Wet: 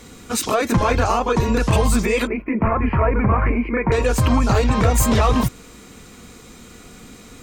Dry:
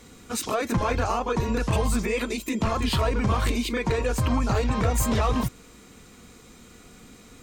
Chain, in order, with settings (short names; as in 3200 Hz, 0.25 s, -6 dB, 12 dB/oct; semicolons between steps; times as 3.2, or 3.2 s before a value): 2.27–3.92 elliptic low-pass 2300 Hz, stop band 40 dB; gain +7 dB